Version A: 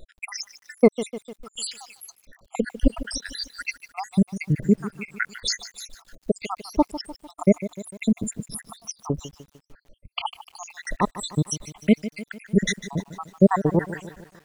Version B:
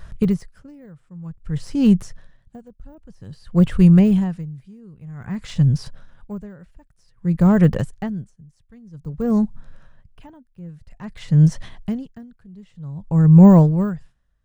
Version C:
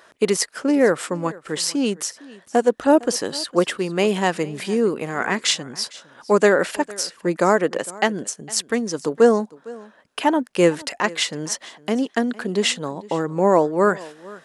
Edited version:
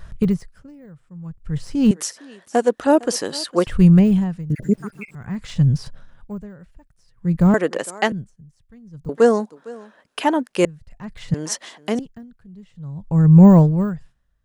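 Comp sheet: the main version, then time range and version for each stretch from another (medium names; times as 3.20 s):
B
1.91–3.67 s: from C
4.50–5.15 s: from A
7.54–8.12 s: from C
9.09–10.65 s: from C
11.34–11.99 s: from C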